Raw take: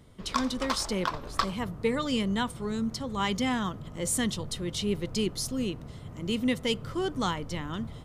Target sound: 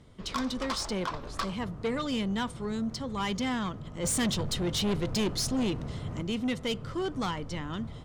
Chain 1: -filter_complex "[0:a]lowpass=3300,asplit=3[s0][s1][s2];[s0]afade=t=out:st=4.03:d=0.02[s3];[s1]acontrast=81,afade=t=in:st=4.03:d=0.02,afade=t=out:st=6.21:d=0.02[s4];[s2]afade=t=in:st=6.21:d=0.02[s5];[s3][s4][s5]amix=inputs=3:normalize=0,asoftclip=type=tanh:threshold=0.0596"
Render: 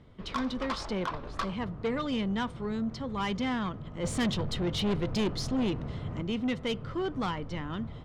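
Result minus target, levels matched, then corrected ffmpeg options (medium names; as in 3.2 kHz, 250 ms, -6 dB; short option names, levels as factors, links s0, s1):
8 kHz band -9.5 dB
-filter_complex "[0:a]lowpass=8000,asplit=3[s0][s1][s2];[s0]afade=t=out:st=4.03:d=0.02[s3];[s1]acontrast=81,afade=t=in:st=4.03:d=0.02,afade=t=out:st=6.21:d=0.02[s4];[s2]afade=t=in:st=6.21:d=0.02[s5];[s3][s4][s5]amix=inputs=3:normalize=0,asoftclip=type=tanh:threshold=0.0596"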